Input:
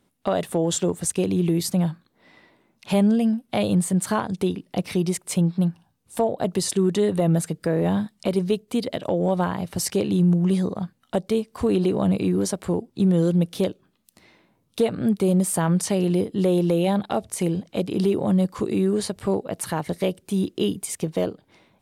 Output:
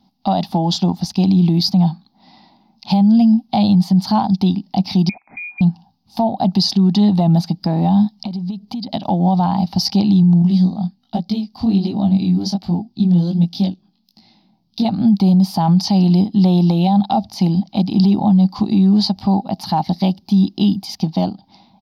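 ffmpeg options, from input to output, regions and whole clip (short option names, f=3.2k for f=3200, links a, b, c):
-filter_complex "[0:a]asettb=1/sr,asplit=3[a][b][c];[a]atrim=end=5.094[d];[b]atrim=start=5.09:end=5.61,asetpts=PTS-STARTPTS,afade=t=in:d=0.004:c=qsin,afade=t=out:st=0.516:d=0.004:c=qsin,acompressor=threshold=-26dB:ratio=6:attack=3.2:release=140:knee=1:detection=peak,lowpass=f=2.2k:t=q:w=0.5098,lowpass=f=2.2k:t=q:w=0.6013,lowpass=f=2.2k:t=q:w=0.9,lowpass=f=2.2k:t=q:w=2.563,afreqshift=-2600[e];[c]atrim=start=5.606[f];[d][e]acrossfade=d=0.004:c1=hsin:c2=qsin[g];[g][f]acrossfade=d=0.004:c1=qsin:c2=hsin,asettb=1/sr,asplit=3[h][i][j];[h]atrim=end=8.184[k];[i]atrim=start=8.18:end=8.89,asetpts=PTS-STARTPTS,afade=t=in:d=0.004:c=qsin,afade=t=out:st=0.706:d=0.004:c=qsin,lowshelf=f=320:g=5,acompressor=threshold=-32dB:ratio=8:attack=3.2:release=140:knee=1:detection=peak[l];[j]atrim=start=8.886[m];[k][l]acrossfade=d=0.004:c1=hsin:c2=qsin[n];[n][m]acrossfade=d=0.004:c1=qsin:c2=hsin,asettb=1/sr,asplit=3[o][p][q];[o]atrim=end=10.424[r];[p]atrim=start=10.42:end=14.85,asetpts=PTS-STARTPTS,afade=t=in:d=0.004:c=qsin,afade=t=out:st=4.426:d=0.004:c=qsin,equalizer=f=970:w=1.5:g=-7.5,flanger=delay=18:depth=5.5:speed=1.3[s];[q]atrim=start=14.846[t];[r][s]acrossfade=d=0.004:c1=hsin:c2=qsin[u];[u][t]acrossfade=d=0.004:c1=qsin:c2=hsin,firequalizer=gain_entry='entry(140,0);entry(200,11);entry(460,-17);entry(790,13);entry(1100,-3);entry(1600,-12);entry(4800,14);entry(7900,-27);entry(13000,-6)':delay=0.05:min_phase=1,alimiter=limit=-11dB:level=0:latency=1:release=19,volume=4dB"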